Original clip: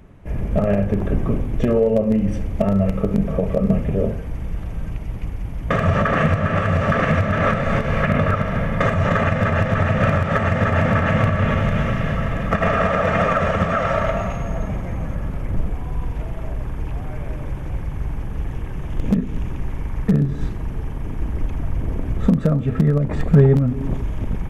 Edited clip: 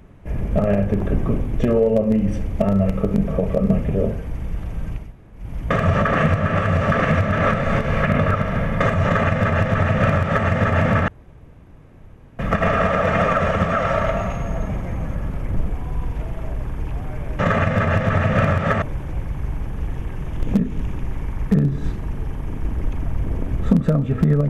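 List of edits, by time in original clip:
0:05.05–0:05.43: fill with room tone, crossfade 0.24 s
0:09.04–0:10.47: duplicate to 0:17.39
0:11.08–0:12.39: fill with room tone

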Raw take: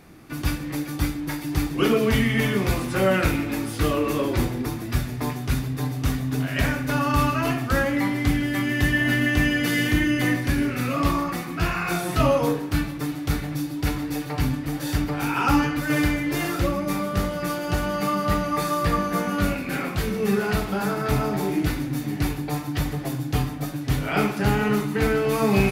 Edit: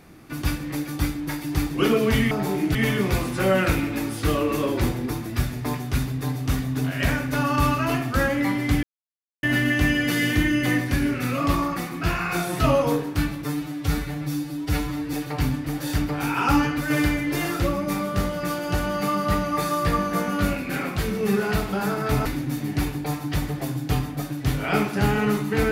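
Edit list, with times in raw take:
0:08.39–0:08.99: silence
0:13.00–0:14.13: time-stretch 1.5×
0:21.25–0:21.69: move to 0:02.31

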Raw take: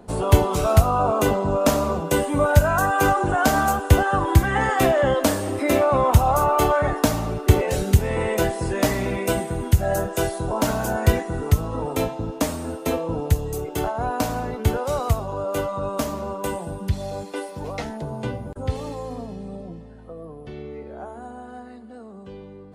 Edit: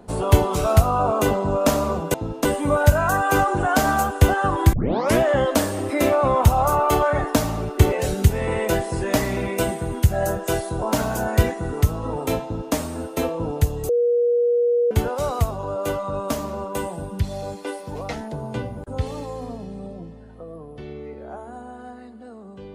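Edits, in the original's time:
0:04.42: tape start 0.47 s
0:12.12–0:12.43: duplicate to 0:02.14
0:13.58–0:14.60: beep over 479 Hz −15.5 dBFS

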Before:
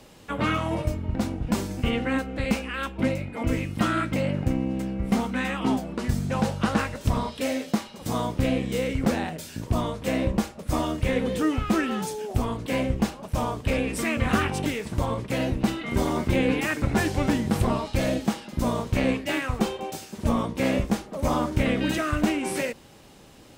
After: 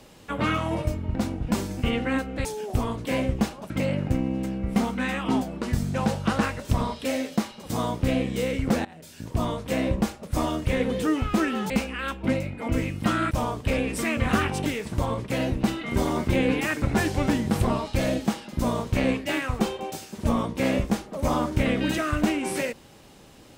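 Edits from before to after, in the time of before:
0:02.45–0:04.06: swap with 0:12.06–0:13.31
0:09.21–0:09.83: fade in, from −21 dB

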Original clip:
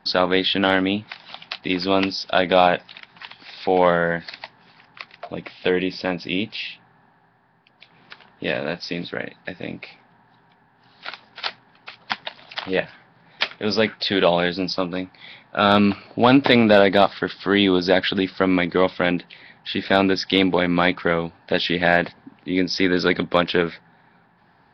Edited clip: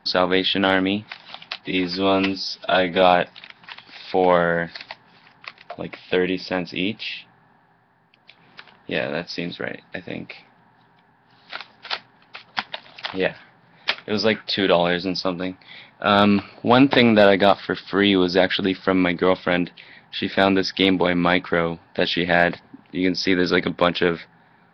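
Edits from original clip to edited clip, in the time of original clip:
0:01.61–0:02.55: time-stretch 1.5×

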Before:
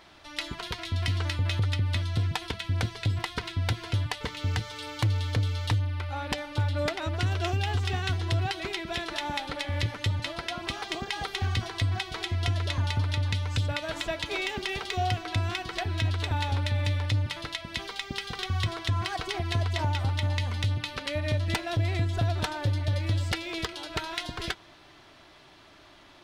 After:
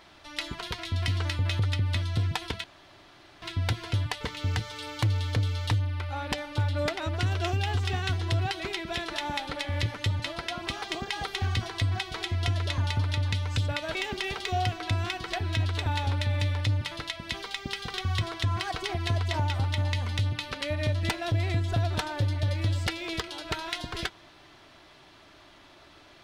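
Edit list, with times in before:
0:02.64–0:03.42: fill with room tone
0:13.95–0:14.40: remove

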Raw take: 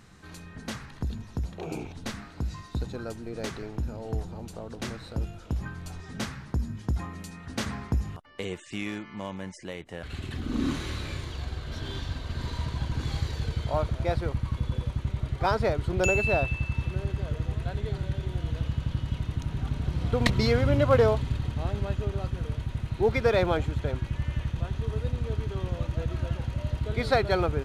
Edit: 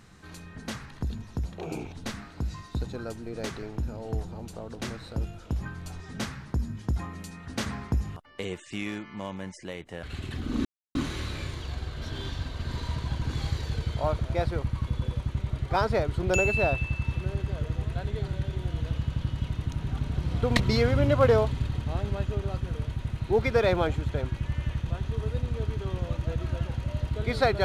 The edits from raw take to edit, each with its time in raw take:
0:10.65: splice in silence 0.30 s

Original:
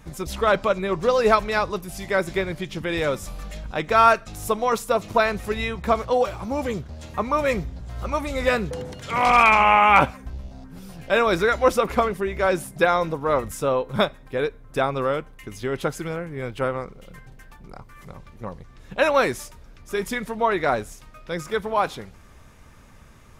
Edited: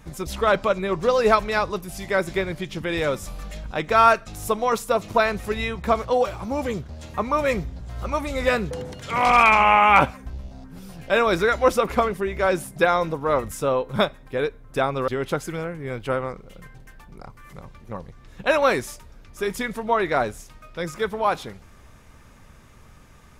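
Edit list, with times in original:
0:15.08–0:15.60: remove

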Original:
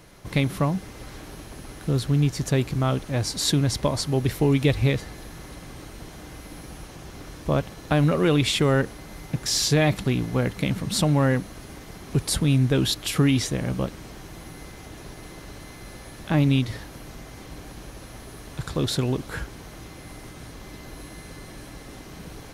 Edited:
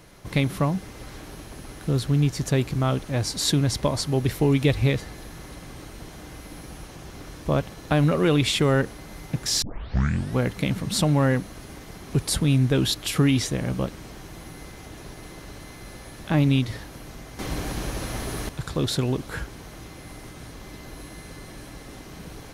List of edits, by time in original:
0:09.62: tape start 0.75 s
0:17.39–0:18.49: clip gain +10.5 dB

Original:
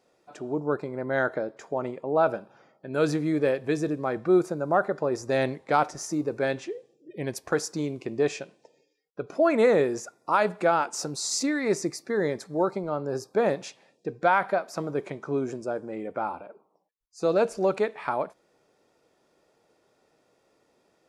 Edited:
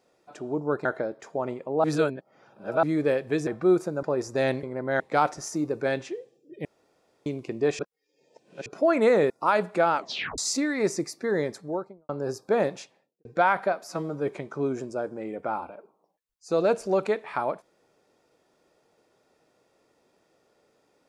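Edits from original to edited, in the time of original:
0:00.85–0:01.22: move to 0:05.57
0:02.21–0:03.20: reverse
0:03.84–0:04.11: remove
0:04.67–0:04.97: remove
0:07.22–0:07.83: fill with room tone
0:08.36–0:09.23: reverse
0:09.87–0:10.16: remove
0:10.82: tape stop 0.42 s
0:12.32–0:12.95: fade out and dull
0:13.57–0:14.11: fade out and dull
0:14.70–0:14.99: time-stretch 1.5×

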